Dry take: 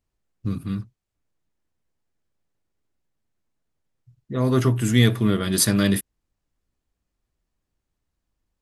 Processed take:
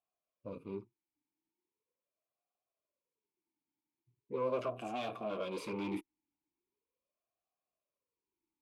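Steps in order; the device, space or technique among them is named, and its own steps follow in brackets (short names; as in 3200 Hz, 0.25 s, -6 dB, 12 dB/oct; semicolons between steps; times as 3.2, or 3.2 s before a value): 4.8–5.71 comb 3.7 ms, depth 32%; talk box (tube stage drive 26 dB, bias 0.7; vowel sweep a-u 0.4 Hz); gain +6.5 dB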